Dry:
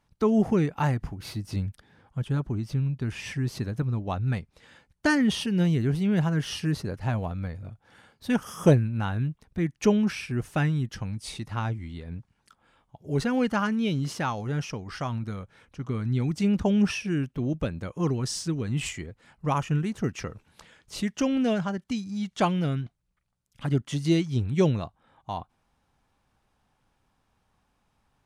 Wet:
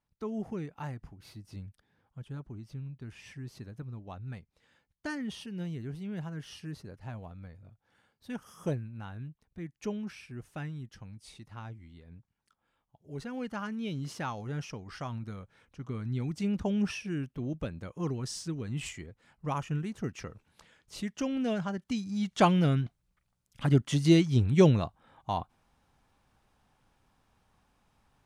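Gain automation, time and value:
13.19 s -14 dB
14.18 s -7 dB
21.34 s -7 dB
22.49 s +1.5 dB

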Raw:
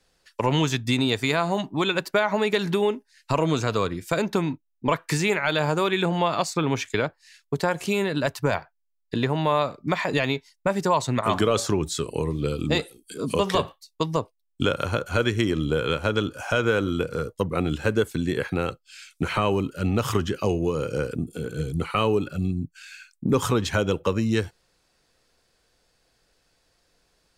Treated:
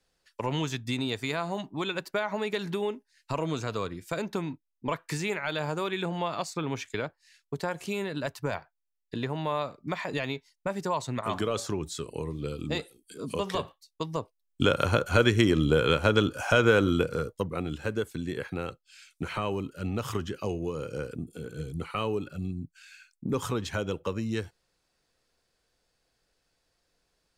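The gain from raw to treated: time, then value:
14.11 s -8 dB
14.78 s +1 dB
16.93 s +1 dB
17.63 s -8 dB

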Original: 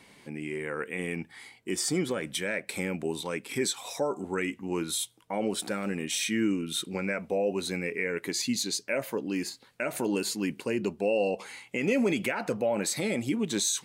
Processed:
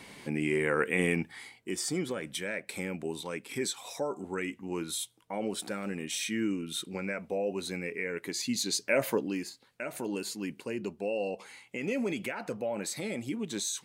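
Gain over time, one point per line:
1.06 s +6 dB
1.77 s -4 dB
8.4 s -4 dB
9.09 s +5 dB
9.45 s -6 dB

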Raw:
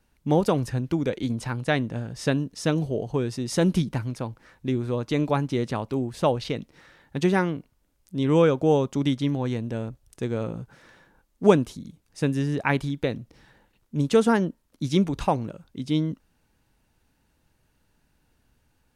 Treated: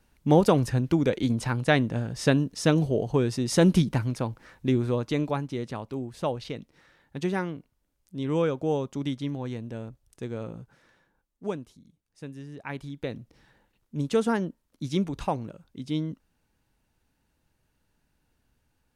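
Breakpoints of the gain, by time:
4.83 s +2 dB
5.46 s -6.5 dB
10.56 s -6.5 dB
11.62 s -16 dB
12.51 s -16 dB
13.18 s -5 dB

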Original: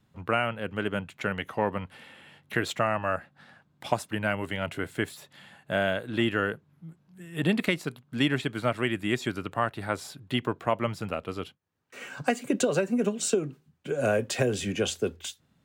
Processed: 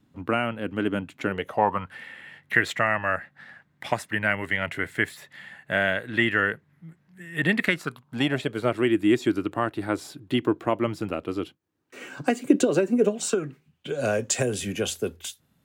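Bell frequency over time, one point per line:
bell +13 dB 0.53 oct
1.23 s 280 Hz
1.98 s 1900 Hz
7.6 s 1900 Hz
8.81 s 320 Hz
12.94 s 320 Hz
13.41 s 1600 Hz
14.64 s 12000 Hz

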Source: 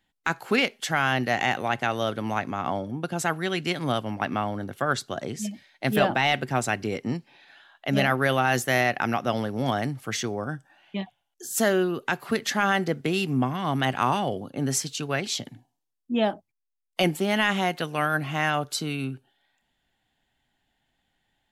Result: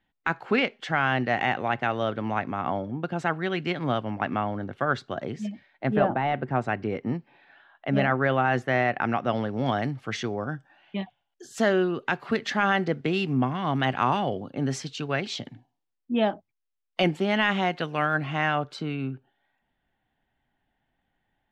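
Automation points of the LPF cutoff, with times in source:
5.48 s 2700 Hz
6.16 s 1100 Hz
6.84 s 2000 Hz
8.82 s 2000 Hz
9.69 s 3700 Hz
18.3 s 3700 Hz
19.02 s 2000 Hz

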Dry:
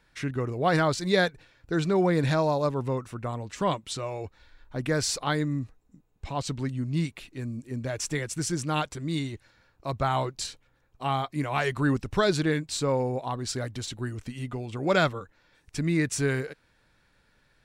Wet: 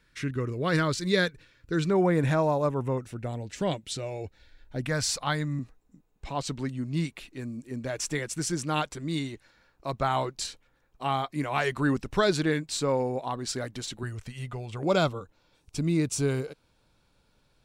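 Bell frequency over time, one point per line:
bell -14.5 dB 0.49 oct
760 Hz
from 1.9 s 4400 Hz
from 2.98 s 1100 Hz
from 4.84 s 370 Hz
from 5.59 s 95 Hz
from 14.03 s 280 Hz
from 14.83 s 1800 Hz

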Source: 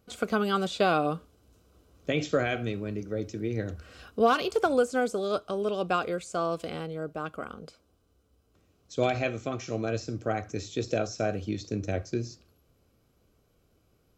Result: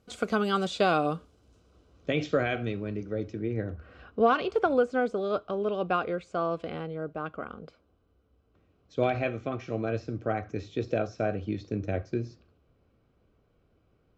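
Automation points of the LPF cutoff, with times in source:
1.05 s 9100 Hz
2.4 s 3800 Hz
3.13 s 3800 Hz
3.73 s 1600 Hz
4.33 s 2700 Hz

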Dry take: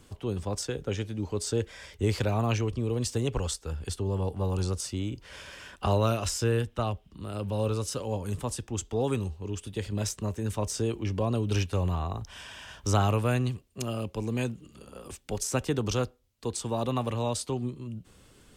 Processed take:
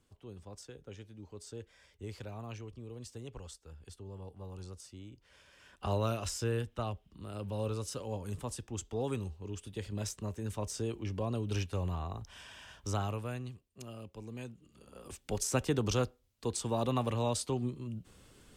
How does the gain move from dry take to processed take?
5.51 s -17 dB
5.93 s -7 dB
12.66 s -7 dB
13.42 s -14 dB
14.5 s -14 dB
15.26 s -2.5 dB

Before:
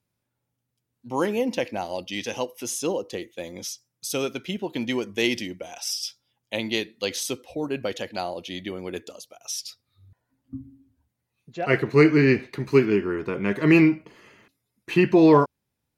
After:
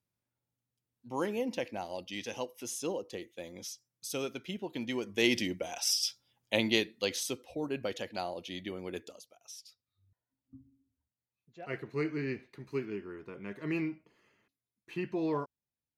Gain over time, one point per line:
4.93 s -9 dB
5.47 s -0.5 dB
6.6 s -0.5 dB
7.31 s -7 dB
9.03 s -7 dB
9.56 s -17.5 dB

